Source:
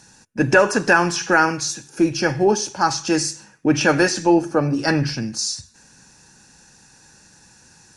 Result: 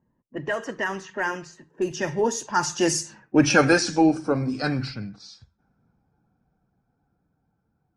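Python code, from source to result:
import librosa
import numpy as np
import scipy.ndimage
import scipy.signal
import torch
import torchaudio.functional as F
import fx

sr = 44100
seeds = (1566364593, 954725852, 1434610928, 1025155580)

y = fx.spec_quant(x, sr, step_db=15)
y = fx.doppler_pass(y, sr, speed_mps=35, closest_m=25.0, pass_at_s=3.35)
y = fx.env_lowpass(y, sr, base_hz=670.0, full_db=-22.0)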